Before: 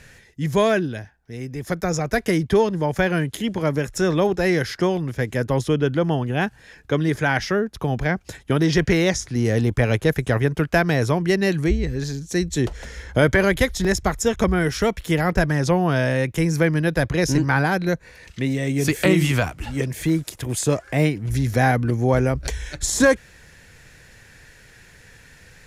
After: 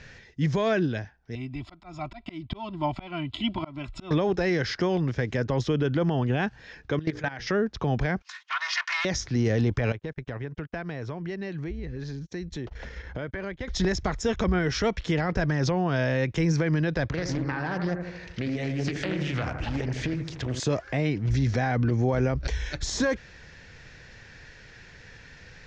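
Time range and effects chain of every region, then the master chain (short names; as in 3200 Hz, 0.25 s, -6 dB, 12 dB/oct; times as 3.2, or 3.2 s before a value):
1.35–4.11 comb 3 ms, depth 60% + auto swell 0.325 s + fixed phaser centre 1700 Hz, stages 6
6.99–7.47 notches 60/120/180/240/300/360/420/480 Hz + level quantiser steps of 19 dB + Doppler distortion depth 0.14 ms
8.22–9.05 minimum comb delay 2.8 ms + elliptic high-pass 990 Hz, stop band 70 dB + dynamic EQ 1500 Hz, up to +5 dB, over -46 dBFS, Q 1.1
9.92–13.68 tone controls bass 0 dB, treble -8 dB + compressor 4:1, threshold -33 dBFS + gate -39 dBFS, range -31 dB
17.07–20.6 compressor 12:1, threshold -25 dBFS + analogue delay 79 ms, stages 1024, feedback 59%, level -6.5 dB + Doppler distortion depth 0.35 ms
whole clip: limiter -16 dBFS; steep low-pass 6000 Hz 36 dB/oct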